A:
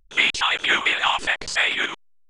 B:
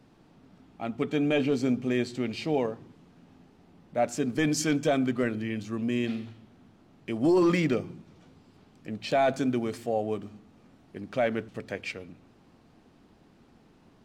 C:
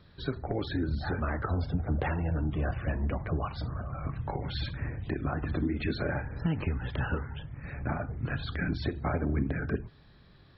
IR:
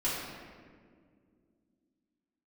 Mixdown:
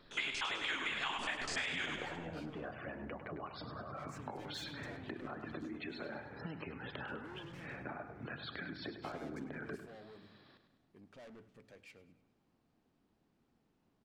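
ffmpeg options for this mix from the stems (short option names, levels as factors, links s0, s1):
-filter_complex "[0:a]volume=0.266,asplit=2[s0][s1];[s1]volume=0.422[s2];[1:a]asoftclip=type=tanh:threshold=0.0211,volume=0.126,asplit=2[s3][s4];[s4]volume=0.112[s5];[2:a]highpass=250,acompressor=threshold=0.00891:ratio=6,volume=0.891,asplit=2[s6][s7];[s7]volume=0.316[s8];[s2][s5][s8]amix=inputs=3:normalize=0,aecho=0:1:101|202|303|404|505|606|707:1|0.5|0.25|0.125|0.0625|0.0312|0.0156[s9];[s0][s3][s6][s9]amix=inputs=4:normalize=0,acompressor=threshold=0.0178:ratio=6"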